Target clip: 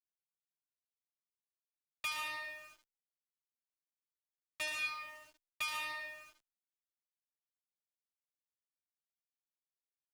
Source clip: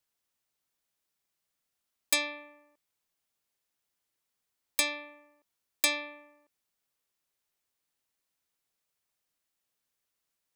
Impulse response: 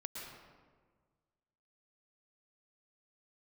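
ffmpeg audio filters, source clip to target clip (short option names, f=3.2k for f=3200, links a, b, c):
-filter_complex "[0:a]asetrate=45938,aresample=44100,aresample=8000,aresample=44100,aeval=exprs='0.168*(cos(1*acos(clip(val(0)/0.168,-1,1)))-cos(1*PI/2))+0.0335*(cos(8*acos(clip(val(0)/0.168,-1,1)))-cos(8*PI/2))':c=same,highpass=110,equalizer=f=300:w=0.7:g=-15,bandreject=f=50:t=h:w=6,bandreject=f=100:t=h:w=6,bandreject=f=150:t=h:w=6,bandreject=f=200:t=h:w=6,bandreject=f=250:t=h:w=6,bandreject=f=300:t=h:w=6,aecho=1:1:73|146|219|292:0.447|0.134|0.0402|0.0121[a];[1:a]atrim=start_sample=2205[b];[a][b]afir=irnorm=-1:irlink=0,aeval=exprs='val(0)*gte(abs(val(0)),0.002)':c=same,asplit=2[c][d];[d]adelay=8.5,afreqshift=1.4[e];[c][e]amix=inputs=2:normalize=1"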